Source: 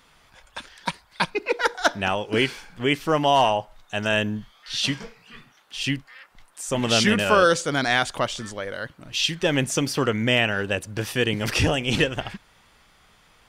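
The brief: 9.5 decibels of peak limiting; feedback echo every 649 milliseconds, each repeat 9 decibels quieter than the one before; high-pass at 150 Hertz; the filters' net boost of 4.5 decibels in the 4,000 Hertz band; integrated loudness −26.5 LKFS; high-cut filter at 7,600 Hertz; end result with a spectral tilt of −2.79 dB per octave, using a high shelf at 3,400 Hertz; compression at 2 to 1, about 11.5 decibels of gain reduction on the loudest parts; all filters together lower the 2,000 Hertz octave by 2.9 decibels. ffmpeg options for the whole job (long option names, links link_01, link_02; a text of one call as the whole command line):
ffmpeg -i in.wav -af "highpass=150,lowpass=7600,equalizer=frequency=2000:width_type=o:gain=-8,highshelf=frequency=3400:gain=5.5,equalizer=frequency=4000:width_type=o:gain=6,acompressor=threshold=-35dB:ratio=2,alimiter=limit=-22dB:level=0:latency=1,aecho=1:1:649|1298|1947|2596:0.355|0.124|0.0435|0.0152,volume=7.5dB" out.wav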